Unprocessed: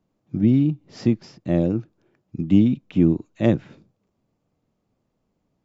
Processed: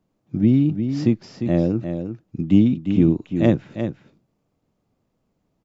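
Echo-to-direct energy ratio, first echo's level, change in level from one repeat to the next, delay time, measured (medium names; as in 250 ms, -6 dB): -8.0 dB, -8.0 dB, no regular repeats, 352 ms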